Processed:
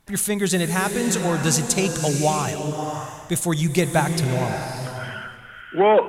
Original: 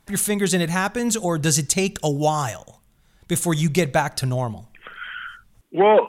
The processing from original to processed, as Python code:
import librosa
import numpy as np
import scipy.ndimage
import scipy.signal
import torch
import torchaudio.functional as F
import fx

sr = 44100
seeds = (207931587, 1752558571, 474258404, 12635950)

y = fx.rev_bloom(x, sr, seeds[0], attack_ms=630, drr_db=5.0)
y = F.gain(torch.from_numpy(y), -1.0).numpy()